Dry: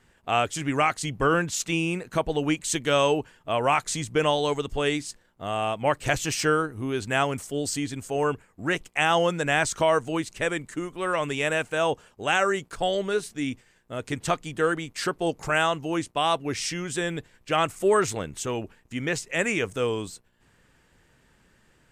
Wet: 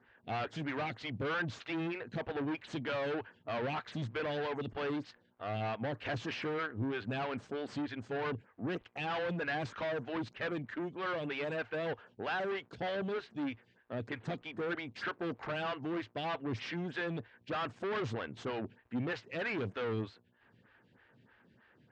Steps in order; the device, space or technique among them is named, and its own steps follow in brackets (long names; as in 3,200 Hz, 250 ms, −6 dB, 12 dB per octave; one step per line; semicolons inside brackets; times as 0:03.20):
vibe pedal into a guitar amplifier (phaser with staggered stages 3.2 Hz; tube saturation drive 34 dB, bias 0.45; loudspeaker in its box 90–3,900 Hz, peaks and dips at 110 Hz +9 dB, 230 Hz +5 dB, 1,600 Hz +5 dB)